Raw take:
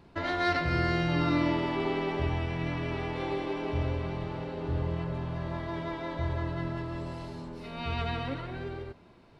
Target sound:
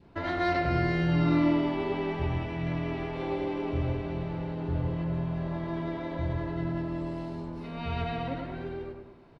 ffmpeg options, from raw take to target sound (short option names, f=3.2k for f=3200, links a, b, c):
-filter_complex "[0:a]highshelf=f=3.7k:g=-8.5,asplit=2[a][b];[b]adelay=102,lowpass=f=1.9k:p=1,volume=-4dB,asplit=2[c][d];[d]adelay=102,lowpass=f=1.9k:p=1,volume=0.48,asplit=2[e][f];[f]adelay=102,lowpass=f=1.9k:p=1,volume=0.48,asplit=2[g][h];[h]adelay=102,lowpass=f=1.9k:p=1,volume=0.48,asplit=2[i][j];[j]adelay=102,lowpass=f=1.9k:p=1,volume=0.48,asplit=2[k][l];[l]adelay=102,lowpass=f=1.9k:p=1,volume=0.48[m];[c][e][g][i][k][m]amix=inputs=6:normalize=0[n];[a][n]amix=inputs=2:normalize=0,adynamicequalizer=threshold=0.00447:dfrequency=1200:dqfactor=1.6:tfrequency=1200:tqfactor=1.6:attack=5:release=100:ratio=0.375:range=2:mode=cutabove:tftype=bell"